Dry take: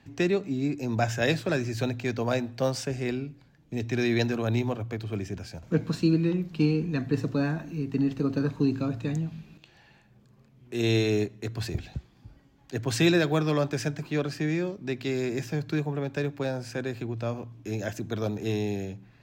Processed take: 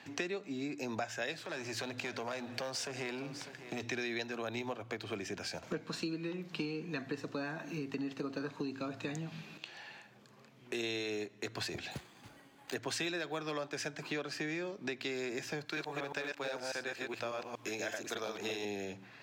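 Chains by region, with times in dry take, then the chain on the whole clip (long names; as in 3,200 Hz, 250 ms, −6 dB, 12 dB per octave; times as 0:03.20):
0:01.38–0:03.83: downward compressor 2.5 to 1, threshold −42 dBFS + leveller curve on the samples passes 2 + single-tap delay 601 ms −18.5 dB
0:11.91–0:12.75: one scale factor per block 5 bits + bad sample-rate conversion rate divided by 4×, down filtered, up hold
0:15.65–0:18.65: delay that plays each chunk backwards 119 ms, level −1 dB + low-shelf EQ 410 Hz −9.5 dB + log-companded quantiser 8 bits
whole clip: meter weighting curve A; downward compressor 6 to 1, threshold −44 dBFS; level +7.5 dB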